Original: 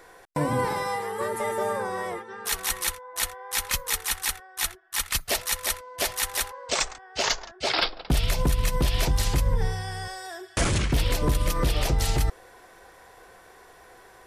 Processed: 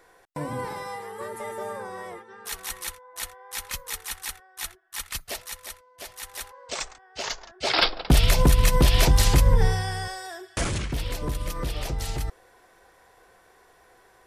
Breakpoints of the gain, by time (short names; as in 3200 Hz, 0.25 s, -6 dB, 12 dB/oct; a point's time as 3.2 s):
5.2 s -6.5 dB
5.94 s -15 dB
6.6 s -6.5 dB
7.36 s -6.5 dB
7.9 s +5.5 dB
9.73 s +5.5 dB
10.95 s -6 dB